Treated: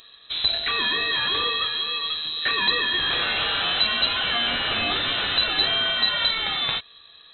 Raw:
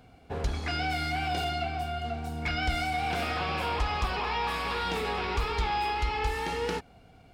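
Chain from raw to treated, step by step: treble shelf 3 kHz +11 dB; frequency inversion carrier 4 kHz; trim +4.5 dB

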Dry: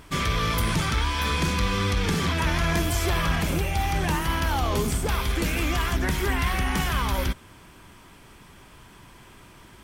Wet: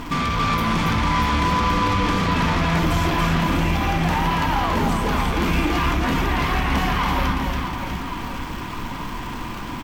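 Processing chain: on a send at -4 dB: reverberation RT60 0.35 s, pre-delay 3 ms; on the sum: crackle 520 per s -39 dBFS; fifteen-band graphic EQ 100 Hz +4 dB, 250 Hz +11 dB, 1 kHz +10 dB, 2.5 kHz +4 dB, 10 kHz -10 dB; sine folder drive 5 dB, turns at -8.5 dBFS; compression 2.5:1, threshold -26 dBFS, peak gain reduction 10 dB; reverse bouncing-ball echo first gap 280 ms, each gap 1.3×, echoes 5

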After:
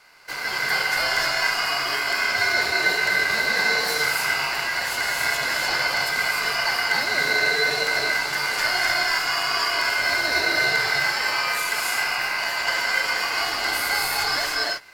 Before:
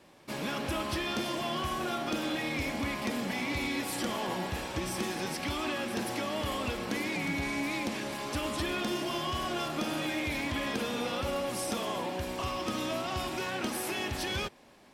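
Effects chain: graphic EQ 125/250/500/1000/2000/4000/8000 Hz -10/+11/-7/+3/+3/-8/-7 dB; Chebyshev shaper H 8 -32 dB, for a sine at -18 dBFS; resonant high shelf 2.3 kHz +8 dB, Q 3; gated-style reverb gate 330 ms rising, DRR -2.5 dB; ring modulator 1.8 kHz; trim +5.5 dB

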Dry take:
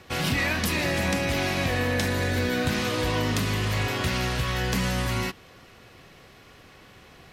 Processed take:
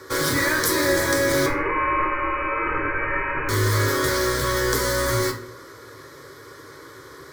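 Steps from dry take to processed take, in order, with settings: Bessel high-pass 160 Hz, order 2; in parallel at -10 dB: integer overflow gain 26.5 dB; 1.46–3.49 s: on the sum: frequency inversion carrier 2.8 kHz; static phaser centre 730 Hz, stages 6; simulated room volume 44 m³, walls mixed, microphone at 0.47 m; trim +8 dB

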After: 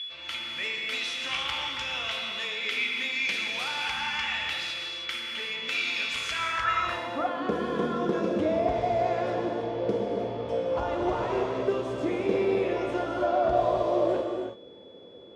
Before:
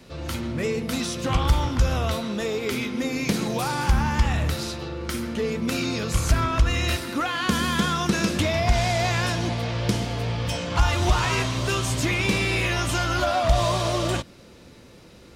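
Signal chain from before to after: whistle 3.4 kHz -32 dBFS; gated-style reverb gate 360 ms flat, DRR 1 dB; band-pass sweep 2.5 kHz -> 470 Hz, 6.36–7.46 s; trim +4 dB

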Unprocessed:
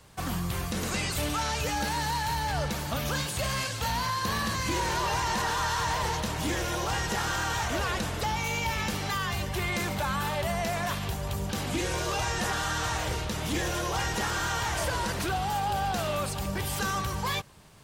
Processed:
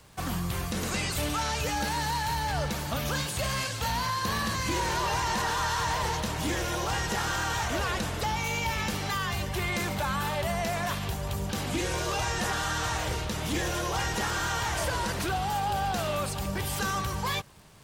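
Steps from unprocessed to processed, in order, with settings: crackle 150 per s -45 dBFS

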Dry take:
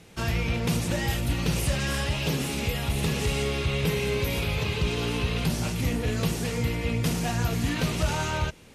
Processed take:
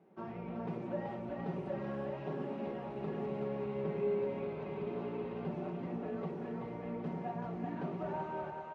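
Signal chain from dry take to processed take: Butterworth band-pass 480 Hz, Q 0.64; band-stop 510 Hz, Q 12; comb 5.3 ms, depth 51%; two-band feedback delay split 510 Hz, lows 101 ms, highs 381 ms, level -3.5 dB; trim -8.5 dB

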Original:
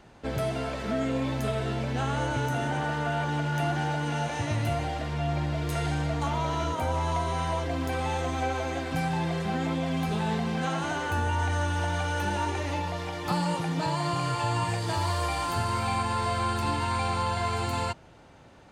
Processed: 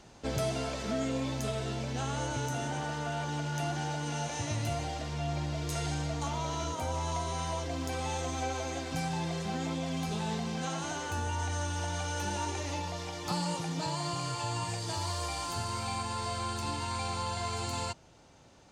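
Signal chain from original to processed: peaking EQ 6.2 kHz +10.5 dB 1.2 oct; gain riding 2 s; peaking EQ 1.7 kHz -3 dB; trim -6 dB

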